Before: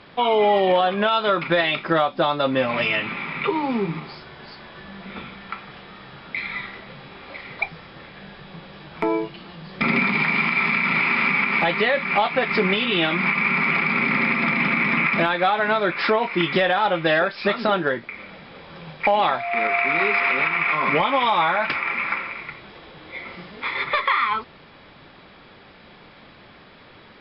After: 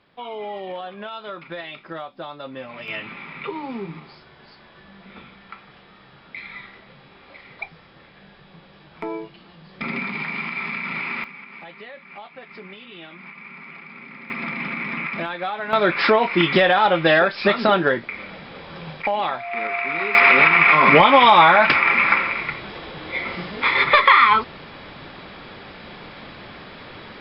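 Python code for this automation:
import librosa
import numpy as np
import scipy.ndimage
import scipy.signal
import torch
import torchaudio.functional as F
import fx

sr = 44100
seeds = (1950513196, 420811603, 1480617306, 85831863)

y = fx.gain(x, sr, db=fx.steps((0.0, -14.0), (2.88, -7.5), (11.24, -20.0), (14.3, -7.5), (15.73, 3.5), (19.02, -4.0), (20.15, 8.0)))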